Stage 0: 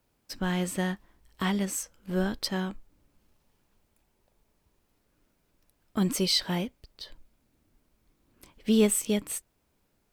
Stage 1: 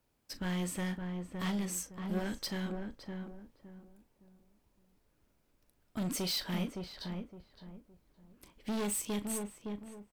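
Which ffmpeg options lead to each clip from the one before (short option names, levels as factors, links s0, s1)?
-filter_complex "[0:a]asoftclip=type=hard:threshold=0.0422,asplit=2[s0][s1];[s1]adelay=39,volume=0.211[s2];[s0][s2]amix=inputs=2:normalize=0,asplit=2[s3][s4];[s4]adelay=564,lowpass=f=1100:p=1,volume=0.631,asplit=2[s5][s6];[s6]adelay=564,lowpass=f=1100:p=1,volume=0.31,asplit=2[s7][s8];[s8]adelay=564,lowpass=f=1100:p=1,volume=0.31,asplit=2[s9][s10];[s10]adelay=564,lowpass=f=1100:p=1,volume=0.31[s11];[s5][s7][s9][s11]amix=inputs=4:normalize=0[s12];[s3][s12]amix=inputs=2:normalize=0,volume=0.596"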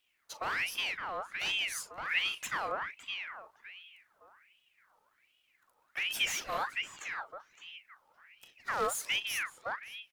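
-af "equalizer=f=390:w=3.7:g=12,aeval=exprs='val(0)*sin(2*PI*1900*n/s+1900*0.55/1.3*sin(2*PI*1.3*n/s))':c=same,volume=1.19"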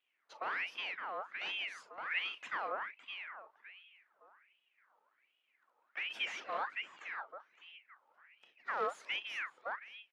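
-af "highpass=300,lowpass=2600,volume=0.708"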